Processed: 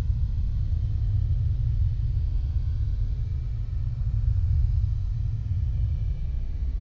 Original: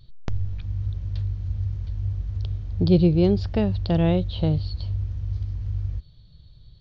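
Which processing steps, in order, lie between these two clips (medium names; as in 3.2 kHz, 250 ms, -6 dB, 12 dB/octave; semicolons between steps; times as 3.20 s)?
delay 365 ms -9 dB; Paulstretch 32×, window 0.05 s, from 5.71 s; trim +2 dB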